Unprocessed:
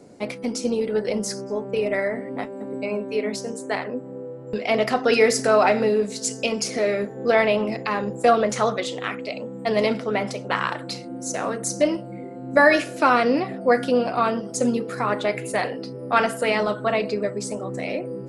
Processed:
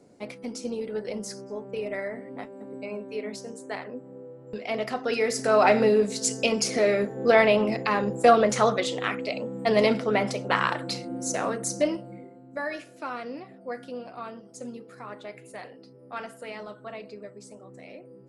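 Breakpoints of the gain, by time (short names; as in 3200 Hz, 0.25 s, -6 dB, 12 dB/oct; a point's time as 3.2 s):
5.25 s -8.5 dB
5.72 s 0 dB
11.21 s 0 dB
12.14 s -6.5 dB
12.51 s -17 dB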